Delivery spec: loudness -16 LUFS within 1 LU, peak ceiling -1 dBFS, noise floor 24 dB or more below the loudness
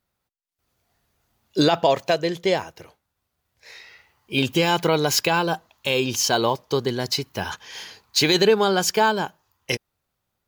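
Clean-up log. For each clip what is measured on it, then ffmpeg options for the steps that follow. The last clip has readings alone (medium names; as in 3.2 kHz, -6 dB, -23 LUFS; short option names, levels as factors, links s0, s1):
loudness -21.5 LUFS; peak level -7.0 dBFS; loudness target -16.0 LUFS
-> -af "volume=1.88"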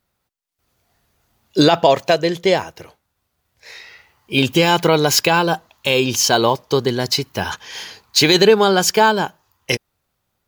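loudness -16.0 LUFS; peak level -1.5 dBFS; noise floor -74 dBFS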